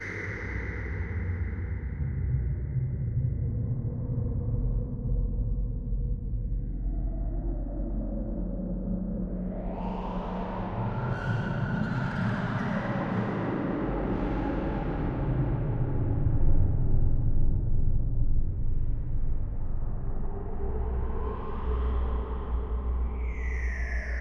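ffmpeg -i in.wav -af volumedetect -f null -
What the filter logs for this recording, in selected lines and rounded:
mean_volume: -27.5 dB
max_volume: -11.5 dB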